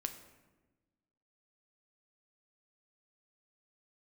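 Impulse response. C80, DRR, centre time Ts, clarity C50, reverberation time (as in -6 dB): 12.5 dB, 6.5 dB, 14 ms, 10.5 dB, 1.2 s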